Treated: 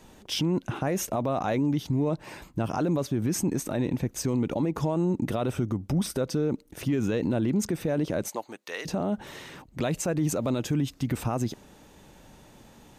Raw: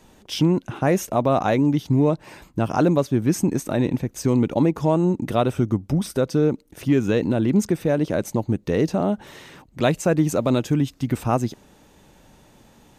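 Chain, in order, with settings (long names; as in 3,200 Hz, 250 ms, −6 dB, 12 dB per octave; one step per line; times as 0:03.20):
0:08.27–0:08.85: high-pass filter 600 Hz → 1,400 Hz 12 dB per octave
brickwall limiter −18.5 dBFS, peak gain reduction 11.5 dB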